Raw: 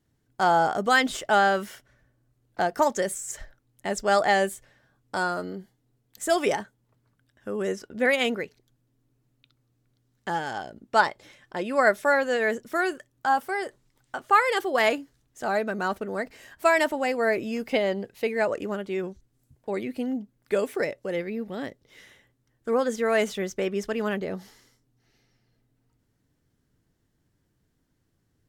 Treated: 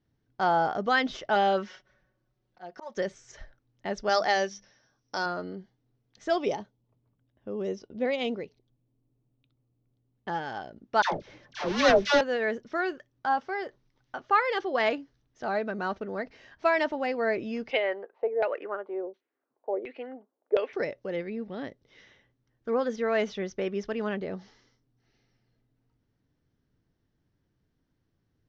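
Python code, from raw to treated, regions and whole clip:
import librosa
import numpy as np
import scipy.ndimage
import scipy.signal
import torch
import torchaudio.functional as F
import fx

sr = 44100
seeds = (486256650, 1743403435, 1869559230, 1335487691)

y = fx.chain(x, sr, fx.low_shelf(hz=230.0, db=-7.0),
    fx.comb(ms=5.4, depth=0.75),
    fx.auto_swell(attack_ms=424.0), at=(1.35, 2.97))
y = fx.chain(y, sr, fx.lowpass_res(hz=5700.0, q=12.0),
    fx.low_shelf(hz=190.0, db=-7.5),
    fx.hum_notches(base_hz=50, count=4), at=(4.09, 5.26))
y = fx.chain(y, sr, fx.env_lowpass(base_hz=2400.0, full_db=-23.5),
    fx.peak_eq(hz=1600.0, db=-13.0, octaves=0.85), at=(6.38, 10.28))
y = fx.chain(y, sr, fx.halfwave_hold(),
    fx.dispersion(late='lows', ms=104.0, hz=870.0), at=(11.02, 12.21))
y = fx.chain(y, sr, fx.highpass(hz=380.0, slope=24),
    fx.filter_lfo_lowpass(shape='saw_down', hz=1.4, low_hz=490.0, high_hz=3200.0, q=2.2), at=(17.71, 20.73))
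y = scipy.signal.sosfilt(scipy.signal.cheby1(5, 1.0, 6000.0, 'lowpass', fs=sr, output='sos'), y)
y = fx.high_shelf(y, sr, hz=4600.0, db=-5.0)
y = y * librosa.db_to_amplitude(-3.0)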